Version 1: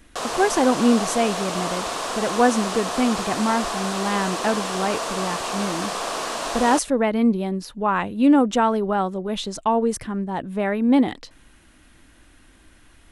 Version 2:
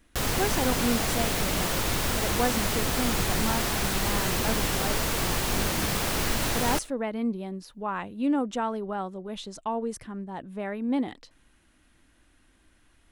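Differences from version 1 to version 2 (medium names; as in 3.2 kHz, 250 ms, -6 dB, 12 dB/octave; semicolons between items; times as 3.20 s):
speech -10.0 dB; background: remove cabinet simulation 350–9500 Hz, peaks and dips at 480 Hz +3 dB, 680 Hz +8 dB, 1.1 kHz +9 dB, 2.1 kHz -5 dB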